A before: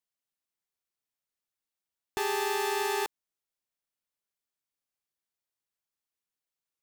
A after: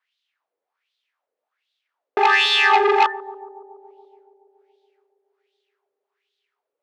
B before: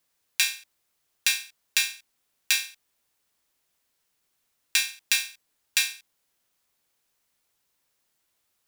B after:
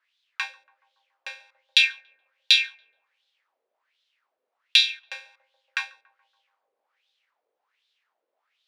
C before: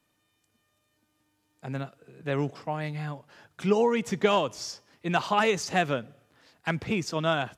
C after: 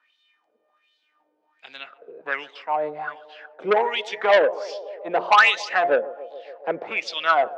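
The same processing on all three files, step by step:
three-band isolator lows -21 dB, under 230 Hz, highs -13 dB, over 5.4 kHz; de-hum 176.5 Hz, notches 12; wah-wah 1.3 Hz 480–3700 Hz, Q 4.6; band-passed feedback delay 141 ms, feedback 81%, band-pass 520 Hz, level -18.5 dB; transformer saturation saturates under 1.8 kHz; peak normalisation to -1.5 dBFS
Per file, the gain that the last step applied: +27.5 dB, +14.5 dB, +18.0 dB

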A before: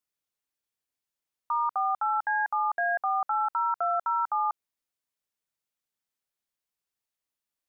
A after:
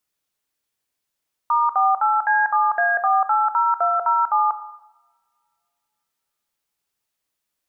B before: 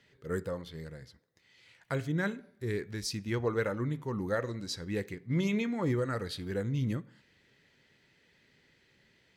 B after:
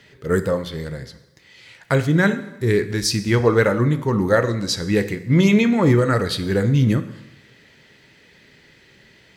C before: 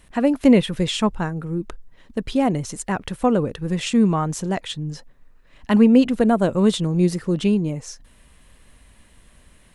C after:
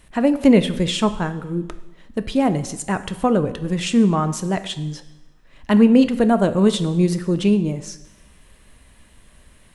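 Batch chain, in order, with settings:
two-slope reverb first 0.92 s, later 2.8 s, from -27 dB, DRR 10.5 dB; normalise loudness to -19 LUFS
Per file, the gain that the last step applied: +8.5 dB, +14.5 dB, +1.0 dB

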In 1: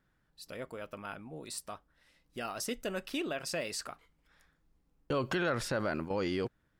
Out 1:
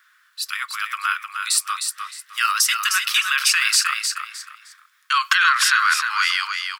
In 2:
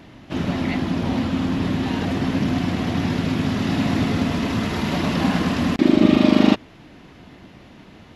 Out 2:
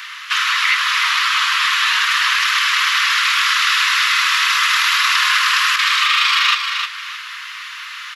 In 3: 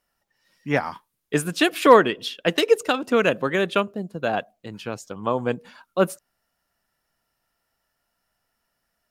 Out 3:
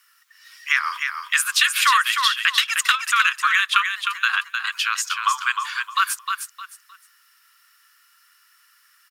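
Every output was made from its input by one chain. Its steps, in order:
steep high-pass 1.1 kHz 72 dB/octave; compression 4:1, threshold -36 dBFS; on a send: feedback delay 308 ms, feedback 26%, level -6 dB; on the sum: peak normalisation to -1.5 dBFS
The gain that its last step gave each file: +23.0 dB, +22.0 dB, +18.5 dB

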